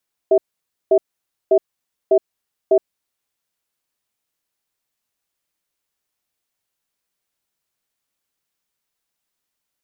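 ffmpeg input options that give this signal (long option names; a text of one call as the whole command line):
ffmpeg -f lavfi -i "aevalsrc='0.251*(sin(2*PI*389*t)+sin(2*PI*646*t))*clip(min(mod(t,0.6),0.07-mod(t,0.6))/0.005,0,1)':duration=2.82:sample_rate=44100" out.wav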